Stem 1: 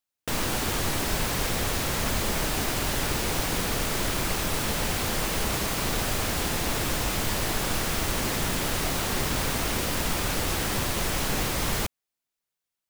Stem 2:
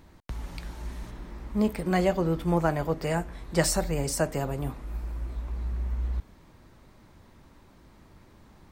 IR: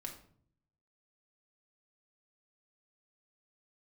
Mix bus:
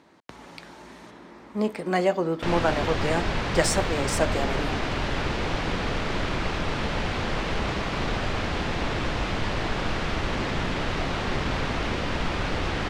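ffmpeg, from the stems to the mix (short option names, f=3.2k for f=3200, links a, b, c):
-filter_complex "[0:a]lowpass=3.6k,adelay=2150,volume=1.5dB[a];[1:a]highpass=260,volume=3dB[b];[a][b]amix=inputs=2:normalize=0,adynamicsmooth=sensitivity=3:basefreq=7.6k"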